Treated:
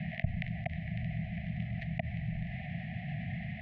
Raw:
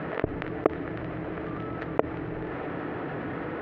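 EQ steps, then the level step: Chebyshev band-stop 210–730 Hz, order 4; elliptic band-stop 640–2000 Hz, stop band 40 dB; LPF 2700 Hz 6 dB/oct; +3.5 dB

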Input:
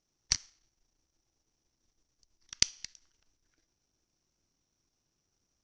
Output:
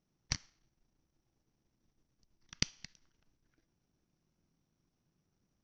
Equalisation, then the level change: LPF 2900 Hz 6 dB/oct; air absorption 56 m; bell 170 Hz +9.5 dB 1.2 oct; 0.0 dB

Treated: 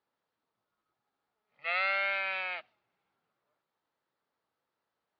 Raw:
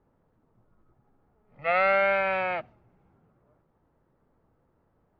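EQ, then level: band-pass 4100 Hz, Q 2.2; air absorption 100 m; +8.5 dB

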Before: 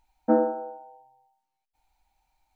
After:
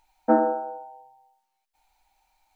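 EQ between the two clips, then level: bell 120 Hz -6 dB 2.9 oct; low shelf 180 Hz -5.5 dB; notches 50/100/150/200/250/300/350/400/450/500 Hz; +6.5 dB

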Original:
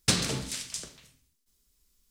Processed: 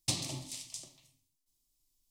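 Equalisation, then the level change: fixed phaser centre 300 Hz, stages 8; -6.5 dB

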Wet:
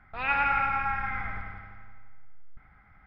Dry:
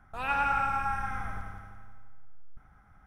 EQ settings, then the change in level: brick-wall FIR low-pass 5300 Hz; bell 2100 Hz +13.5 dB 0.44 oct; 0.0 dB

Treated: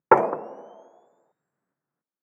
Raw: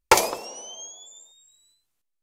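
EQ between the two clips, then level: elliptic band-pass 150–1600 Hz, stop band 40 dB; low shelf 210 Hz +10 dB; +2.0 dB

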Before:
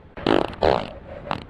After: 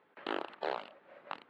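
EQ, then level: HPF 450 Hz 12 dB/oct; band-pass 670 Hz, Q 0.53; bell 620 Hz -11.5 dB 1.8 oct; -6.0 dB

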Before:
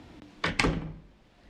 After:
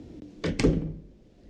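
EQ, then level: resonant low shelf 650 Hz +12.5 dB, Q 1.5; bell 6300 Hz +8 dB 0.97 oct; -8.0 dB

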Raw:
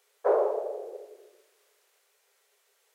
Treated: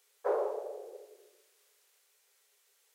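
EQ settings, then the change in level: high shelf 2400 Hz +8.5 dB; notch 650 Hz, Q 12; -7.0 dB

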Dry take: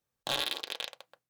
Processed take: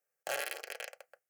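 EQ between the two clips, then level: HPF 350 Hz 12 dB/oct; fixed phaser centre 1000 Hz, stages 6; +2.0 dB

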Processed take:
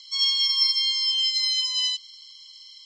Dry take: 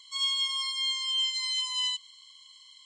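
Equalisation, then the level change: HPF 1400 Hz 12 dB/oct; synth low-pass 5400 Hz, resonance Q 11; 0.0 dB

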